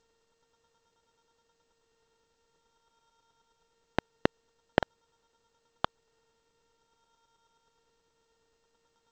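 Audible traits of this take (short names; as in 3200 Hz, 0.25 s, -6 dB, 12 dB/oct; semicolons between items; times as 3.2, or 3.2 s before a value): a buzz of ramps at a fixed pitch in blocks of 32 samples; phasing stages 12, 0.24 Hz, lowest notch 800–2400 Hz; aliases and images of a low sample rate 2300 Hz, jitter 0%; G.722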